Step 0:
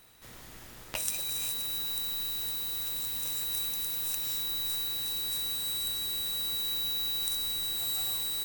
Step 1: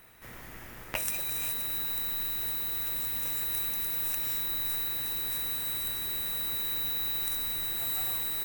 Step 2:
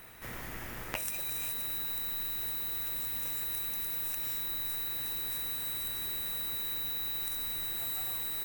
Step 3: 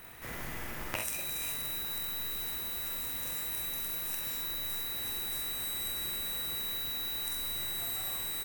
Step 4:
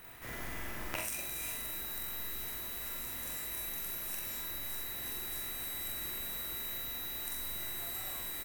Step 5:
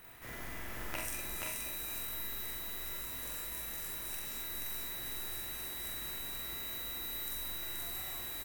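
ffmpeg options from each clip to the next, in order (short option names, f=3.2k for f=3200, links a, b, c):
-af "equalizer=f=2k:t=o:w=1:g=5,equalizer=f=4k:t=o:w=1:g=-8,equalizer=f=8k:t=o:w=1:g=-6,volume=3.5dB"
-af "acompressor=threshold=-40dB:ratio=3,volume=4.5dB"
-filter_complex "[0:a]asplit=2[a][b];[b]adelay=27,volume=-13dB[c];[a][c]amix=inputs=2:normalize=0,aecho=1:1:46|65:0.562|0.398"
-filter_complex "[0:a]asplit=2[a][b];[b]adelay=43,volume=-5dB[c];[a][c]amix=inputs=2:normalize=0,volume=-3dB"
-af "aecho=1:1:478:0.708,volume=-2.5dB"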